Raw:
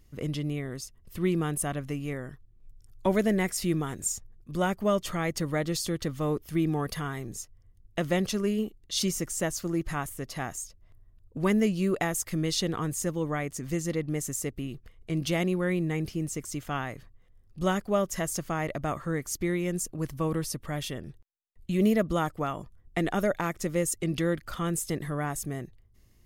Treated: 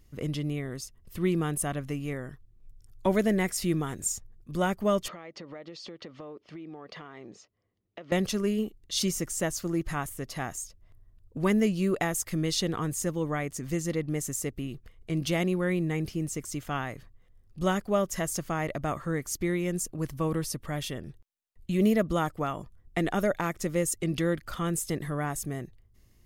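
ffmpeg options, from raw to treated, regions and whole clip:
ffmpeg -i in.wav -filter_complex "[0:a]asettb=1/sr,asplit=3[link_01][link_02][link_03];[link_01]atrim=end=5.084[link_04];[link_02]atrim=start=5.08:end=8.12,asetpts=PTS-STARTPTS,afade=type=in:duration=0.004:curve=qsin,afade=type=out:start_time=3.036:duration=0.004:curve=qsin,highpass=270,equalizer=frequency=570:width_type=q:width=4:gain=4,equalizer=frequency=1600:width_type=q:width=4:gain=-4,equalizer=frequency=3600:width_type=q:width=4:gain=-4,lowpass=frequency=4400:width=0.5412,lowpass=frequency=4400:width=1.3066,acompressor=threshold=-39dB:ratio=10:attack=3.2:release=140:knee=1:detection=peak[link_05];[link_03]atrim=start=8.116[link_06];[link_04][link_05]acrossfade=duration=0.004:curve1=hsin:curve2=qsin[link_07];[link_07][link_06]acrossfade=duration=0.004:curve1=qsin:curve2=hsin" out.wav

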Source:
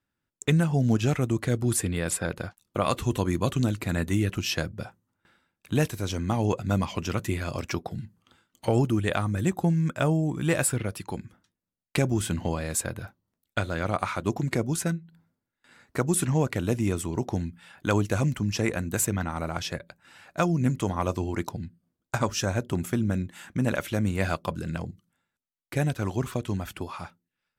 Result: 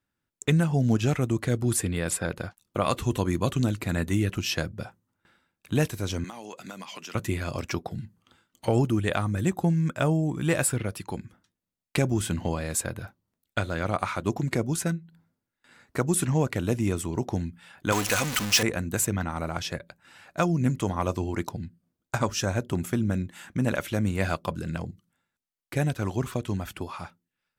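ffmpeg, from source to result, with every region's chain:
ffmpeg -i in.wav -filter_complex "[0:a]asettb=1/sr,asplit=3[link_01][link_02][link_03];[link_01]atrim=end=6.244[link_04];[link_02]atrim=start=6.24:end=7.15,asetpts=PTS-STARTPTS,afade=type=in:duration=0.004:curve=qsin,afade=type=out:start_time=0.906:duration=0.004:curve=qsin,highpass=frequency=170:width=0.5412,highpass=frequency=170:width=1.3066,tiltshelf=frequency=740:gain=-7,acompressor=threshold=-36dB:ratio=10:attack=3.2:release=140:knee=1:detection=peak[link_05];[link_03]atrim=start=7.146[link_06];[link_04][link_05]acrossfade=duration=0.004:curve1=hsin:curve2=qsin[link_07];[link_07][link_06]acrossfade=duration=0.004:curve1=qsin:curve2=hsin,asettb=1/sr,asplit=3[link_08][link_09][link_10];[link_08]atrim=end=17.924[link_11];[link_09]atrim=start=17.92:end=18.63,asetpts=PTS-STARTPTS,afade=type=in:duration=0.004:curve=qsin,afade=type=out:start_time=0.706:duration=0.004:curve=qsin,aeval=exprs='val(0)+0.5*0.0447*sgn(val(0))':channel_layout=same,tiltshelf=frequency=750:gain=-8.5,aecho=1:1:4:0.33,atrim=end_sample=31311[link_12];[link_10]atrim=start=18.626[link_13];[link_11][link_12]acrossfade=duration=0.004:curve1=hsin:curve2=qsin[link_14];[link_14][link_13]acrossfade=duration=0.004:curve1=qsin:curve2=hsin" out.wav

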